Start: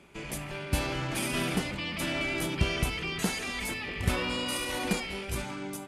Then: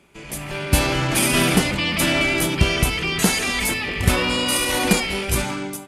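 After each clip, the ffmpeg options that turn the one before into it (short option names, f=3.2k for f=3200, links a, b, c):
-af "highshelf=f=6.6k:g=5.5,dynaudnorm=f=130:g=7:m=13dB"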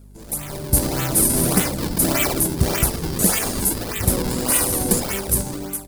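-filter_complex "[0:a]acrossover=split=780|6000[a][b][c];[b]acrusher=samples=41:mix=1:aa=0.000001:lfo=1:lforange=65.6:lforate=1.7[d];[a][d][c]amix=inputs=3:normalize=0,aeval=exprs='val(0)+0.00891*(sin(2*PI*50*n/s)+sin(2*PI*2*50*n/s)/2+sin(2*PI*3*50*n/s)/3+sin(2*PI*4*50*n/s)/4+sin(2*PI*5*50*n/s)/5)':c=same,aexciter=amount=2.9:drive=1.3:freq=3.9k,volume=-2dB"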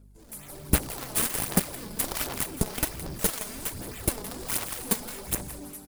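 -af "aecho=1:1:167|334|501|668:0.447|0.138|0.0429|0.0133,aeval=exprs='0.891*(cos(1*acos(clip(val(0)/0.891,-1,1)))-cos(1*PI/2))+0.0562*(cos(3*acos(clip(val(0)/0.891,-1,1)))-cos(3*PI/2))+0.158*(cos(7*acos(clip(val(0)/0.891,-1,1)))-cos(7*PI/2))':c=same,aphaser=in_gain=1:out_gain=1:delay=4.8:decay=0.44:speed=1.3:type=sinusoidal,volume=-6dB"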